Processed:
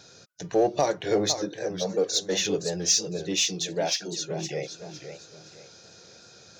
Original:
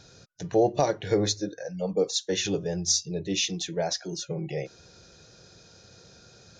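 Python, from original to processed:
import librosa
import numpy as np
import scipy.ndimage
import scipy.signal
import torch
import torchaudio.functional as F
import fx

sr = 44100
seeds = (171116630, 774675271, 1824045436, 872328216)

p1 = fx.highpass(x, sr, hz=260.0, slope=6)
p2 = fx.high_shelf(p1, sr, hz=7600.0, db=3.5)
p3 = np.clip(p2, -10.0 ** (-27.5 / 20.0), 10.0 ** (-27.5 / 20.0))
p4 = p2 + F.gain(torch.from_numpy(p3), -10.5).numpy()
y = fx.echo_warbled(p4, sr, ms=512, feedback_pct=32, rate_hz=2.8, cents=152, wet_db=-9.5)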